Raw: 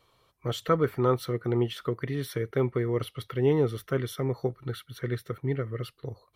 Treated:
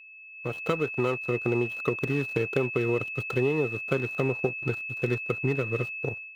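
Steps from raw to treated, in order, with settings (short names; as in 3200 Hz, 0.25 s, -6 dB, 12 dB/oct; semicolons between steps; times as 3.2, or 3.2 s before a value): median filter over 25 samples; HPF 64 Hz 24 dB/oct; low shelf 160 Hz -8 dB; compressor 8:1, threshold -32 dBFS, peak gain reduction 12.5 dB; crossover distortion -58 dBFS; whine 2600 Hz -43 dBFS; AGC gain up to 14 dB; gain -4 dB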